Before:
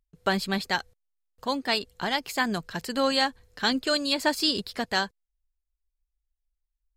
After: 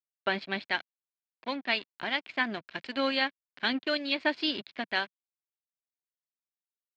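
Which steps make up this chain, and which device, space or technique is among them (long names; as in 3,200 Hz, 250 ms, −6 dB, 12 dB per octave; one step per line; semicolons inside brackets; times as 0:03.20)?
0:02.63–0:03.10: high-shelf EQ 3,200 Hz +5 dB
blown loudspeaker (dead-zone distortion −37.5 dBFS; loudspeaker in its box 170–3,600 Hz, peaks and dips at 180 Hz −9 dB, 460 Hz −8 dB, 840 Hz −6 dB, 1,200 Hz −6 dB, 2,300 Hz +5 dB)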